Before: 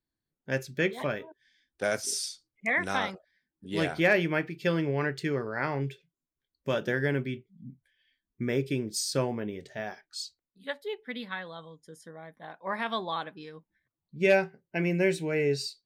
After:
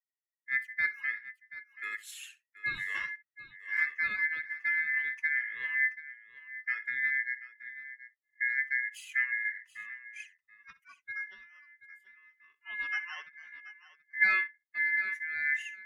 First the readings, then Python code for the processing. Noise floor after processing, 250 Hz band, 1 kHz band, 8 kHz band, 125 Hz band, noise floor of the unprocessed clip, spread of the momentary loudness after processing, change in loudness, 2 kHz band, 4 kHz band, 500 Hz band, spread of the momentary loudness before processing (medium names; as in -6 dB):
under -85 dBFS, under -30 dB, -13.0 dB, under -15 dB, under -30 dB, under -85 dBFS, 18 LU, -1.0 dB, +4.0 dB, -13.0 dB, under -35 dB, 19 LU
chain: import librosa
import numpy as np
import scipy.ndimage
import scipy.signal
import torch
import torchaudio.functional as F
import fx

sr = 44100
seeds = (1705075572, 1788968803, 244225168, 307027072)

y = fx.bin_expand(x, sr, power=1.5)
y = fx.curve_eq(y, sr, hz=(250.0, 390.0, 9300.0), db=(0, -25, -4))
y = fx.rider(y, sr, range_db=10, speed_s=0.5)
y = y * np.sin(2.0 * np.pi * 1900.0 * np.arange(len(y)) / sr)
y = fx.band_shelf(y, sr, hz=1700.0, db=15.5, octaves=1.7)
y = fx.echo_multitap(y, sr, ms=(64, 731), db=(-18.5, -15.5))
y = y * 10.0 ** (-6.0 / 20.0)